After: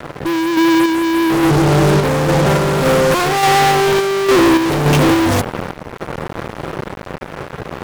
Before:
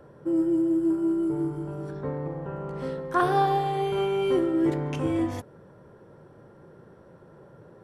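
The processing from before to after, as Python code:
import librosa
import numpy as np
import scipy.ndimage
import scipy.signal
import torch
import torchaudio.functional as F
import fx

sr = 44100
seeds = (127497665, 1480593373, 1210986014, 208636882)

y = fx.fuzz(x, sr, gain_db=49.0, gate_db=-48.0)
y = fx.quant_dither(y, sr, seeds[0], bits=8, dither='none')
y = fx.tremolo_random(y, sr, seeds[1], hz=3.5, depth_pct=55)
y = y * 10.0 ** (4.0 / 20.0)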